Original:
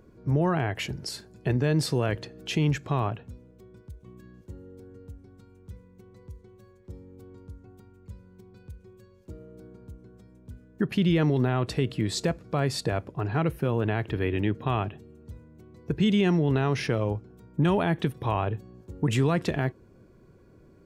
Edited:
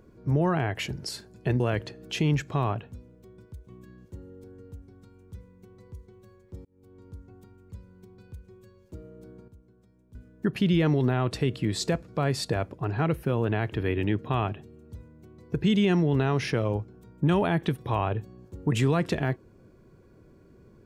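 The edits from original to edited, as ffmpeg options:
ffmpeg -i in.wav -filter_complex "[0:a]asplit=5[link_01][link_02][link_03][link_04][link_05];[link_01]atrim=end=1.602[link_06];[link_02]atrim=start=1.958:end=7.01,asetpts=PTS-STARTPTS,afade=type=out:start_time=5.048:duration=0.004:curve=hsin[link_07];[link_03]atrim=start=7.01:end=9.842,asetpts=PTS-STARTPTS,afade=type=in:duration=0.49[link_08];[link_04]atrim=start=9.838:end=10.512,asetpts=PTS-STARTPTS,volume=-9dB[link_09];[link_05]atrim=start=10.508[link_10];[link_07][link_08]concat=n=2:v=0:a=1[link_11];[link_06][link_11]acrossfade=duration=0.004:curve1=hsin:curve2=hsin[link_12];[link_12][link_09]acrossfade=duration=0.004:curve1=hsin:curve2=hsin[link_13];[link_13][link_10]acrossfade=duration=0.004:curve1=hsin:curve2=hsin" out.wav

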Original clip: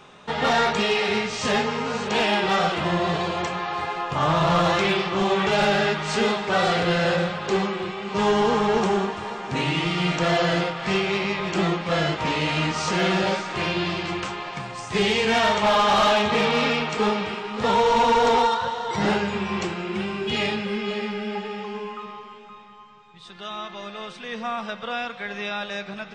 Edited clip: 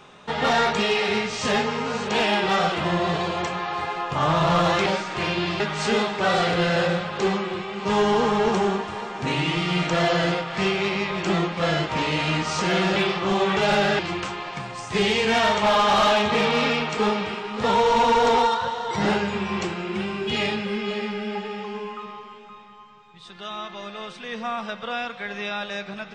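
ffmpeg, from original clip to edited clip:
ffmpeg -i in.wav -filter_complex "[0:a]asplit=5[link_01][link_02][link_03][link_04][link_05];[link_01]atrim=end=4.862[link_06];[link_02]atrim=start=13.248:end=13.992[link_07];[link_03]atrim=start=5.888:end=13.252[link_08];[link_04]atrim=start=4.858:end=5.892[link_09];[link_05]atrim=start=13.988[link_10];[link_06][link_07]acrossfade=duration=0.004:curve1=hsin:curve2=hsin[link_11];[link_11][link_08]acrossfade=duration=0.004:curve1=hsin:curve2=hsin[link_12];[link_12][link_09]acrossfade=duration=0.004:curve1=hsin:curve2=hsin[link_13];[link_13][link_10]acrossfade=duration=0.004:curve1=hsin:curve2=hsin" out.wav

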